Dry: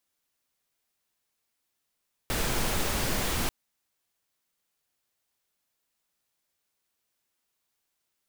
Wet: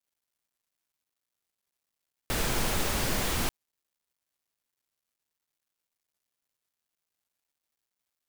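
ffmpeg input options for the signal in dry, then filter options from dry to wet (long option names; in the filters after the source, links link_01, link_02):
-f lavfi -i "anoisesrc=color=pink:amplitude=0.204:duration=1.19:sample_rate=44100:seed=1"
-af "acrusher=bits=11:mix=0:aa=0.000001"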